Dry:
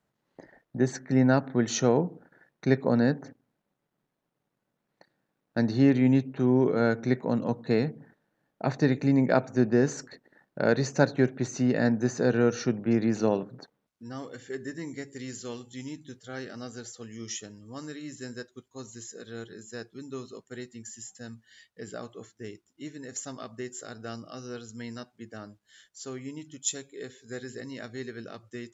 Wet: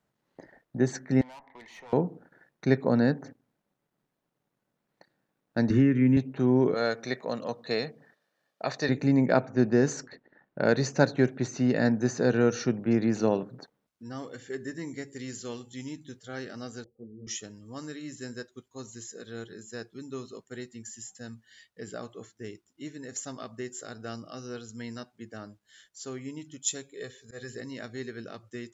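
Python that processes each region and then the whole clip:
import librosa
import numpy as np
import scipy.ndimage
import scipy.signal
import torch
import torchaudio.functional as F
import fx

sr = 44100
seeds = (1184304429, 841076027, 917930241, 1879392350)

y = fx.chain(x, sr, fx.double_bandpass(hz=1400.0, octaves=1.1),
    fx.tube_stage(drive_db=44.0, bias=0.3),
    fx.band_squash(depth_pct=70), at=(1.21, 1.93))
y = fx.chain(y, sr, fx.high_shelf(hz=5700.0, db=-11.5),
    fx.fixed_phaser(hz=1800.0, stages=4),
    fx.band_squash(depth_pct=100), at=(5.7, 6.17))
y = fx.chain(y, sr, fx.highpass(hz=540.0, slope=6),
    fx.peak_eq(hz=4500.0, db=7.0, octaves=1.3),
    fx.comb(ms=1.7, depth=0.31), at=(6.74, 8.89))
y = fx.chain(y, sr, fx.env_lowpass(base_hz=2600.0, full_db=-17.0),
    fx.high_shelf(hz=5800.0, db=5.5), at=(9.43, 12.58))
y = fx.chain(y, sr, fx.cheby2_lowpass(hz=2300.0, order=4, stop_db=70),
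    fx.ensemble(), at=(16.84, 17.27))
y = fx.chain(y, sr, fx.comb(ms=1.7, depth=0.53),
    fx.auto_swell(attack_ms=109.0), at=(26.94, 27.56))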